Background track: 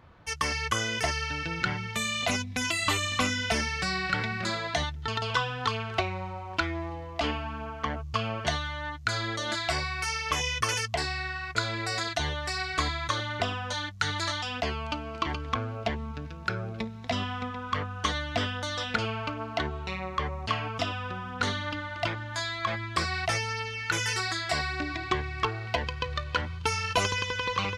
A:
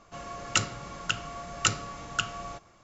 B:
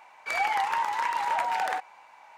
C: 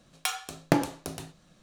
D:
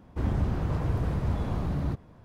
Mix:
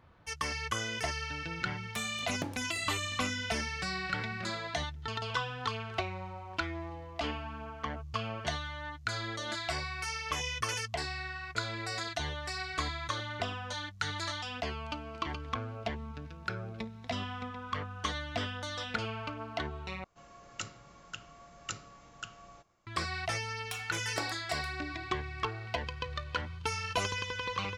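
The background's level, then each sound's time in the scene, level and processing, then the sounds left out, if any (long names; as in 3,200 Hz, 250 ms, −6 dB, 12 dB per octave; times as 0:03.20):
background track −6 dB
0:01.70: mix in C −15.5 dB
0:20.04: overwrite with A −14.5 dB
0:23.46: mix in C −11.5 dB + high-pass filter 440 Hz
not used: B, D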